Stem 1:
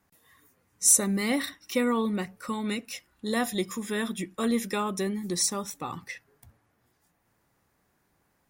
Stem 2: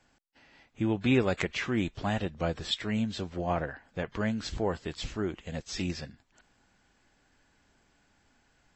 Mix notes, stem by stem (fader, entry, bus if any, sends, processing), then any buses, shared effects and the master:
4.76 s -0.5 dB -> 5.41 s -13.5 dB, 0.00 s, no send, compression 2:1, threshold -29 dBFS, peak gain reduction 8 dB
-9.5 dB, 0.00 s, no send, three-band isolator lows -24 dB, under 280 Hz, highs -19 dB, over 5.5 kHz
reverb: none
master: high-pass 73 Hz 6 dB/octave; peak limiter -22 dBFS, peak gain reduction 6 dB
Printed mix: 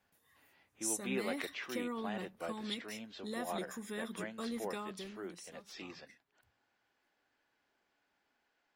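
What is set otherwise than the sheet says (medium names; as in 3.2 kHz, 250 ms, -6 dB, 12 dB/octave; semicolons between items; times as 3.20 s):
stem 1 -0.5 dB -> -10.5 dB; master: missing high-pass 73 Hz 6 dB/octave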